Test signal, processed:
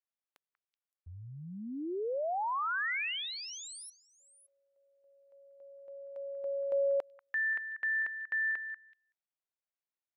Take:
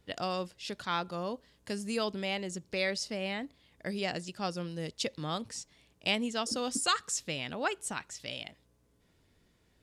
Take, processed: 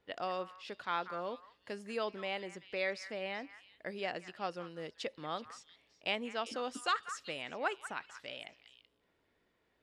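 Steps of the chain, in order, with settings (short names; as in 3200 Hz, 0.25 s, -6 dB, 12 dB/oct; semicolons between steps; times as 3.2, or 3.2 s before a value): tone controls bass -14 dB, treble -15 dB; on a send: delay with a stepping band-pass 0.189 s, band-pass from 1500 Hz, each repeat 1.4 oct, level -9.5 dB; on the sum: gain -2 dB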